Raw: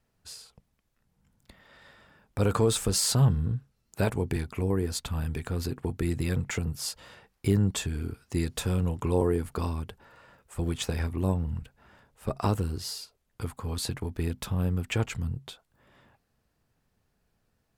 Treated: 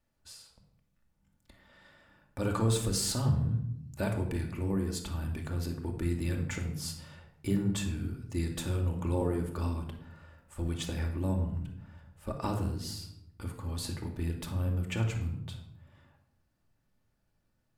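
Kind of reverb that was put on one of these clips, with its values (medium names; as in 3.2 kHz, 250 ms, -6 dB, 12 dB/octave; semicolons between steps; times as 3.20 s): simulated room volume 2100 m³, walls furnished, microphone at 2.5 m; trim -7 dB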